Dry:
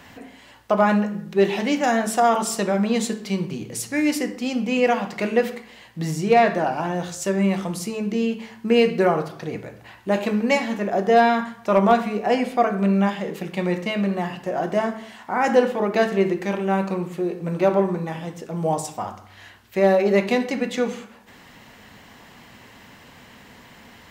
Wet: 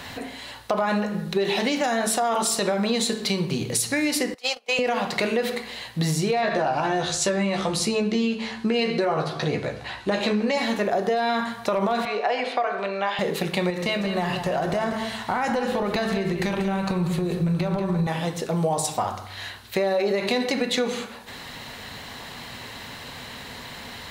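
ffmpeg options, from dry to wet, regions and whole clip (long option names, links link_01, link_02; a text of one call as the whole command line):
ffmpeg -i in.wav -filter_complex "[0:a]asettb=1/sr,asplit=3[link_01][link_02][link_03];[link_01]atrim=end=4.344[link_04];[link_02]atrim=start=4.34:end=4.79,asetpts=PTS-STARTPTS,afade=type=in:duration=0.004:curve=qsin,afade=type=out:start_time=0.446:duration=0.004:curve=qsin,highpass=frequency=530:width=0.5412,highpass=frequency=530:width=1.3066,agate=range=-28dB:threshold=-35dB:ratio=16:release=100:detection=peak,acompressor=mode=upward:threshold=-51dB:ratio=2.5:attack=3.2:release=140:knee=2.83:detection=peak[link_05];[link_03]atrim=start=4.786[link_06];[link_04][link_05]acrossfade=duration=0.004:curve1=hsin:curve2=qsin[link_07];[link_07][link_06]acrossfade=duration=0.004:curve1=qsin:curve2=hsin,asettb=1/sr,asplit=3[link_08][link_09][link_10];[link_08]atrim=end=6.414[link_11];[link_09]atrim=start=6.41:end=10.58,asetpts=PTS-STARTPTS,afade=type=in:duration=0.004:curve=qsin,afade=type=out:start_time=4.166:duration=0.004:curve=qsin,lowpass=7300,asplit=2[link_12][link_13];[link_13]adelay=14,volume=-5dB[link_14];[link_12][link_14]amix=inputs=2:normalize=0,atrim=end_sample=183897[link_15];[link_10]atrim=start=10.576[link_16];[link_11][link_15]acrossfade=duration=0.004:curve1=hsin:curve2=qsin[link_17];[link_17][link_16]acrossfade=duration=0.004:curve1=qsin:curve2=hsin,asettb=1/sr,asplit=3[link_18][link_19][link_20];[link_18]atrim=end=12.054[link_21];[link_19]atrim=start=12.05:end=13.19,asetpts=PTS-STARTPTS,afade=type=in:duration=0.004:curve=qsin,afade=type=out:start_time=1.136:duration=0.004:curve=qsin,acompressor=threshold=-21dB:ratio=2.5:attack=3.2:release=140:knee=1:detection=peak,highpass=530,lowpass=4100,asplit=2[link_22][link_23];[link_23]adelay=24,volume=-14dB[link_24];[link_22][link_24]amix=inputs=2:normalize=0,atrim=end_sample=50274[link_25];[link_20]atrim=start=13.186[link_26];[link_21][link_25]acrossfade=duration=0.004:curve1=hsin:curve2=qsin[link_27];[link_27][link_26]acrossfade=duration=0.004:curve1=qsin:curve2=hsin,asettb=1/sr,asplit=3[link_28][link_29][link_30];[link_28]atrim=end=13.704[link_31];[link_29]atrim=start=13.7:end=18.07,asetpts=PTS-STARTPTS,afade=type=in:duration=0.004:curve=qsin,afade=type=out:start_time=4.366:duration=0.004:curve=qsin,acompressor=threshold=-25dB:ratio=6:attack=3.2:release=140:knee=1:detection=peak,asubboost=boost=6.5:cutoff=170,aecho=1:1:188:0.335,atrim=end_sample=192717[link_32];[link_30]atrim=start=18.066[link_33];[link_31][link_32]acrossfade=duration=0.004:curve1=hsin:curve2=qsin[link_34];[link_34][link_33]acrossfade=duration=0.004:curve1=qsin:curve2=hsin,equalizer=frequency=200:width_type=o:width=0.33:gain=-6,equalizer=frequency=315:width_type=o:width=0.33:gain=-5,equalizer=frequency=4000:width_type=o:width=0.33:gain=10,equalizer=frequency=10000:width_type=o:width=0.33:gain=6,alimiter=limit=-16dB:level=0:latency=1:release=46,acompressor=threshold=-29dB:ratio=4,volume=8dB" out.wav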